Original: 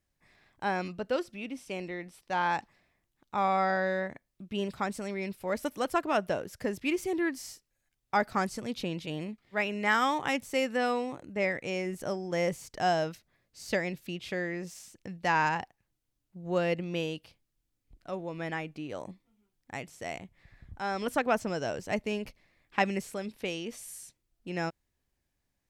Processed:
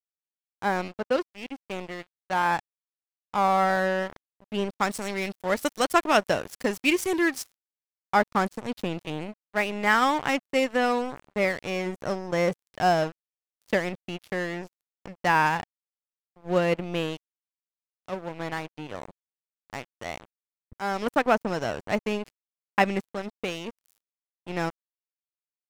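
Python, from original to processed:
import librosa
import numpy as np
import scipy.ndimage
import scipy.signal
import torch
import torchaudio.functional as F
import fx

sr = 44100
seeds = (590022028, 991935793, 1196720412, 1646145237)

y = fx.high_shelf(x, sr, hz=2400.0, db=fx.steps((0.0, -4.5), (4.79, 8.0), (7.42, -4.0)))
y = np.sign(y) * np.maximum(np.abs(y) - 10.0 ** (-40.5 / 20.0), 0.0)
y = y * librosa.db_to_amplitude(7.0)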